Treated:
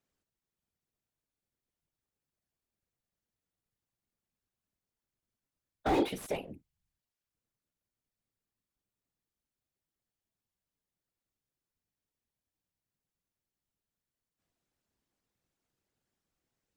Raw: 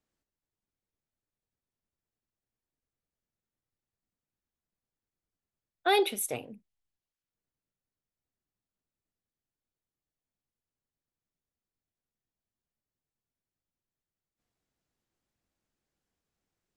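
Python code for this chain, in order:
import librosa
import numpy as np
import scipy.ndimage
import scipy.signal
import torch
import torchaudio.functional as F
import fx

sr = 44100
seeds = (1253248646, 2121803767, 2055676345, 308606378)

y = fx.whisperise(x, sr, seeds[0])
y = fx.slew_limit(y, sr, full_power_hz=36.0)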